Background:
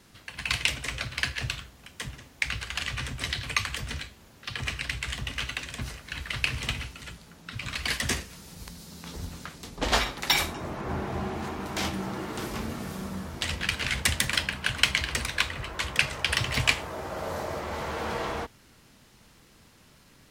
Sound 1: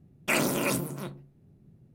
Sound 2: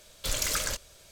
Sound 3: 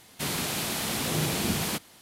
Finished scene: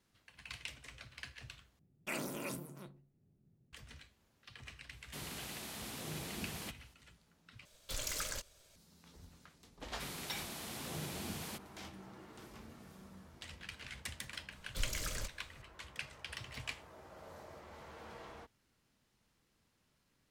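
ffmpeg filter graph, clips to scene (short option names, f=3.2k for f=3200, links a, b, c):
-filter_complex "[3:a]asplit=2[a][b];[2:a]asplit=2[c][d];[0:a]volume=-20dB[e];[c]aeval=exprs='if(lt(val(0),0),0.708*val(0),val(0))':c=same[f];[d]lowshelf=f=310:g=10.5[g];[e]asplit=3[h][i][j];[h]atrim=end=1.794[k];[1:a]atrim=end=1.94,asetpts=PTS-STARTPTS,volume=-14.5dB[l];[i]atrim=start=3.726:end=7.654[m];[f]atrim=end=1.11,asetpts=PTS-STARTPTS,volume=-9dB[n];[j]atrim=start=8.756[o];[a]atrim=end=2.01,asetpts=PTS-STARTPTS,volume=-16dB,afade=t=in:d=0.004:c=hsin,afade=t=out:st=2.006:d=0.004:c=hsin,adelay=217413S[p];[b]atrim=end=2.01,asetpts=PTS-STARTPTS,volume=-15.5dB,afade=t=in:d=0.004:c=hsin,afade=t=out:st=2.006:d=0.004:c=hsin,adelay=9800[q];[g]atrim=end=1.11,asetpts=PTS-STARTPTS,volume=-13.5dB,afade=t=in:d=0.004:c=hsin,afade=t=out:st=1.106:d=0.004:c=hsin,adelay=14510[r];[k][l]acrossfade=d=0.004:c1=hsin:c2=hsin[s];[s][m]acrossfade=d=0.004:c1=hsin:c2=hsin[t];[t][n]acrossfade=d=0.004:c1=hsin:c2=hsin[u];[u][o]acrossfade=d=0.004:c1=hsin:c2=hsin[v];[v][p][q][r]amix=inputs=4:normalize=0"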